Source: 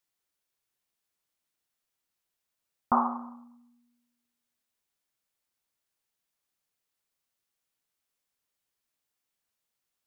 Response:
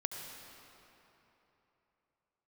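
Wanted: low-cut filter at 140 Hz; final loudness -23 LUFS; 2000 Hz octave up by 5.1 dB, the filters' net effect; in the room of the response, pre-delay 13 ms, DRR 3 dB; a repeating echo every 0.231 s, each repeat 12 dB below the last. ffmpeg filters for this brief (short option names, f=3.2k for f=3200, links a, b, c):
-filter_complex "[0:a]highpass=140,equalizer=f=2k:t=o:g=9,aecho=1:1:231|462|693:0.251|0.0628|0.0157,asplit=2[a][b];[1:a]atrim=start_sample=2205,adelay=13[c];[b][c]afir=irnorm=-1:irlink=0,volume=-4dB[d];[a][d]amix=inputs=2:normalize=0,volume=5dB"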